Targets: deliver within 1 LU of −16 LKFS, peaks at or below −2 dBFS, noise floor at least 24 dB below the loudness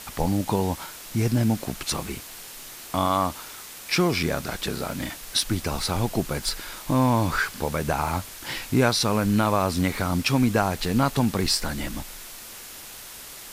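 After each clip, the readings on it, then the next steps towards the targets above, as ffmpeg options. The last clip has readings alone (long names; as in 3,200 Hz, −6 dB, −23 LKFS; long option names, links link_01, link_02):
background noise floor −41 dBFS; target noise floor −49 dBFS; integrated loudness −25.0 LKFS; sample peak −6.5 dBFS; target loudness −16.0 LKFS
→ -af "afftdn=noise_reduction=8:noise_floor=-41"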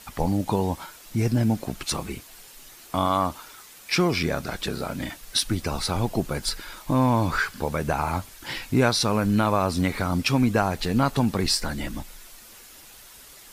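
background noise floor −48 dBFS; target noise floor −49 dBFS
→ -af "afftdn=noise_reduction=6:noise_floor=-48"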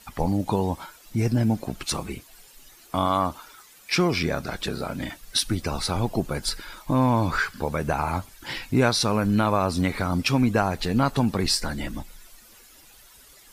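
background noise floor −52 dBFS; integrated loudness −25.0 LKFS; sample peak −6.5 dBFS; target loudness −16.0 LKFS
→ -af "volume=9dB,alimiter=limit=-2dB:level=0:latency=1"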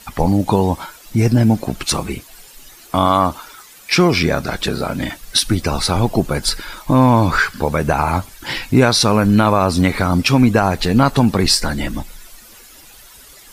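integrated loudness −16.5 LKFS; sample peak −2.0 dBFS; background noise floor −43 dBFS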